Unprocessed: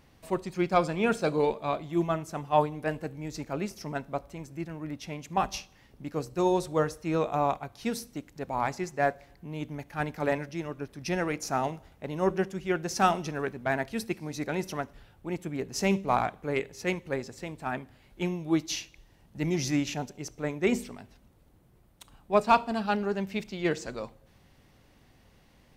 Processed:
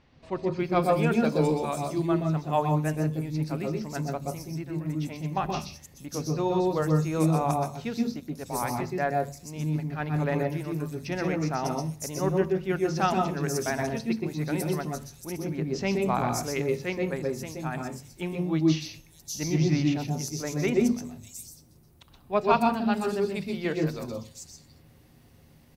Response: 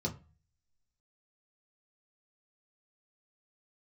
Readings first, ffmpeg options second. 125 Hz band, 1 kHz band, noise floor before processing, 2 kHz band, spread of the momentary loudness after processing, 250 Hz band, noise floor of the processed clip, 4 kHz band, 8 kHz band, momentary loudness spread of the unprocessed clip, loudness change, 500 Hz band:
+7.5 dB, 0.0 dB, −61 dBFS, −1.0 dB, 12 LU, +4.0 dB, −56 dBFS, +0.5 dB, +3.0 dB, 13 LU, +2.5 dB, +1.5 dB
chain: -filter_complex "[0:a]highshelf=frequency=6400:gain=11.5,acrossover=split=4900[link_01][link_02];[link_02]adelay=600[link_03];[link_01][link_03]amix=inputs=2:normalize=0,asplit=2[link_04][link_05];[1:a]atrim=start_sample=2205,highshelf=frequency=11000:gain=6,adelay=124[link_06];[link_05][link_06]afir=irnorm=-1:irlink=0,volume=-6dB[link_07];[link_04][link_07]amix=inputs=2:normalize=0,volume=-2.5dB"

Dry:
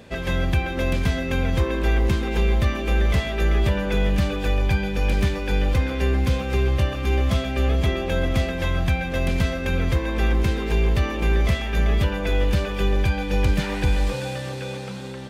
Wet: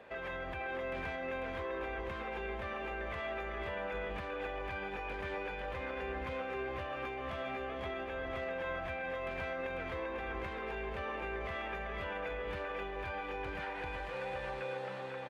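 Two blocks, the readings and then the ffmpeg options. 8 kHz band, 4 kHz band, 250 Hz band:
can't be measured, −18.0 dB, −20.5 dB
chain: -filter_complex "[0:a]acrossover=split=440 2500:gain=0.112 1 0.0794[link_01][link_02][link_03];[link_01][link_02][link_03]amix=inputs=3:normalize=0,alimiter=level_in=5.5dB:limit=-24dB:level=0:latency=1,volume=-5.5dB,aecho=1:1:496:0.531,volume=-3dB"

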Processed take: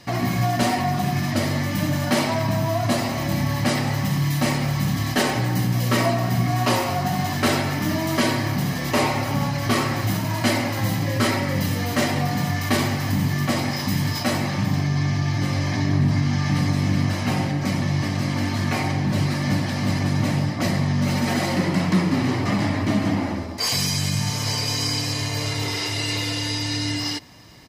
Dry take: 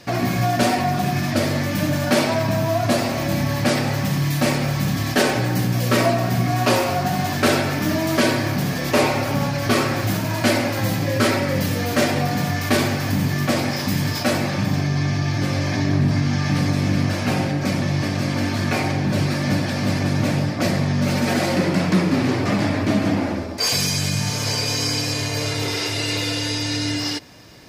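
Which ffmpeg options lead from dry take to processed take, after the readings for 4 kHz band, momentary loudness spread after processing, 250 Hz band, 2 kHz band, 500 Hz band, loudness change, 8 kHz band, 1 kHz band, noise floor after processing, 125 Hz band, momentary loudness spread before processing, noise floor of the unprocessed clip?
−2.0 dB, 3 LU, −2.0 dB, −2.5 dB, −5.0 dB, −2.0 dB, −2.0 dB, −1.5 dB, −27 dBFS, −0.5 dB, 3 LU, −25 dBFS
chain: -af "aecho=1:1:1:0.34,volume=-2.5dB"

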